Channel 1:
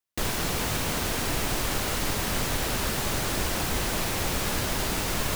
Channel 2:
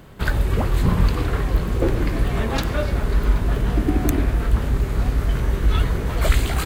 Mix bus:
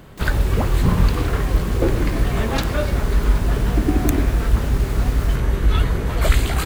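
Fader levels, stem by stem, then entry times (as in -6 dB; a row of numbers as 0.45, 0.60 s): -11.0, +1.5 dB; 0.00, 0.00 s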